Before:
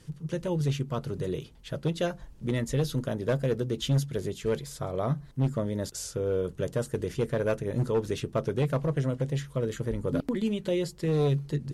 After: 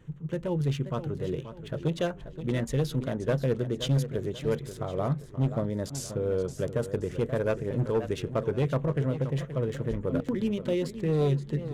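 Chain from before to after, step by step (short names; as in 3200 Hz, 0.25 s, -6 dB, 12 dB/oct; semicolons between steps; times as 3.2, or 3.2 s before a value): Wiener smoothing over 9 samples; warbling echo 0.529 s, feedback 38%, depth 146 cents, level -11.5 dB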